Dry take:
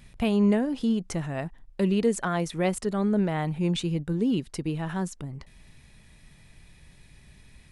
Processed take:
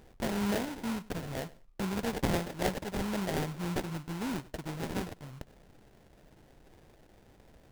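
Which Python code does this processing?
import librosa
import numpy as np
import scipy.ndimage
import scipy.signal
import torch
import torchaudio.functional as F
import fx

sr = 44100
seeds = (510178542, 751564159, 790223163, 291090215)

p1 = fx.low_shelf_res(x, sr, hz=650.0, db=-9.5, q=1.5)
p2 = fx.sample_hold(p1, sr, seeds[0], rate_hz=1200.0, jitter_pct=20)
y = p2 + fx.echo_feedback(p2, sr, ms=98, feedback_pct=18, wet_db=-20.5, dry=0)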